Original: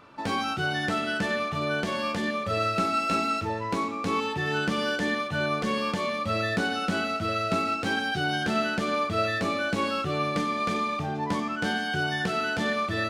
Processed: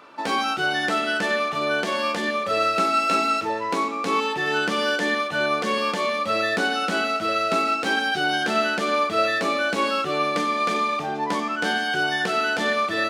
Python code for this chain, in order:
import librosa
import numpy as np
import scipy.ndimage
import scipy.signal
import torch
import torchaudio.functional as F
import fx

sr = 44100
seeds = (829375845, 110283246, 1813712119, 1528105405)

y = scipy.signal.sosfilt(scipy.signal.butter(2, 310.0, 'highpass', fs=sr, output='sos'), x)
y = F.gain(torch.from_numpy(y), 5.5).numpy()